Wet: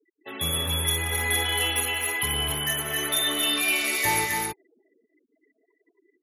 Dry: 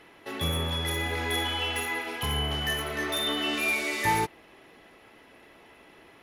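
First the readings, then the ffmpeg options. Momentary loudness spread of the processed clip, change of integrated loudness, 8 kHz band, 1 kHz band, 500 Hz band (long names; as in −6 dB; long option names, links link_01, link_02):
5 LU, +4.0 dB, +11.5 dB, 0.0 dB, −0.5 dB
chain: -af "afftfilt=real='re*gte(hypot(re,im),0.0112)':imag='im*gte(hypot(re,im),0.0112)':win_size=1024:overlap=0.75,aecho=1:1:151|180|244|266:0.106|0.282|0.251|0.668,crystalizer=i=3:c=0,volume=-2.5dB"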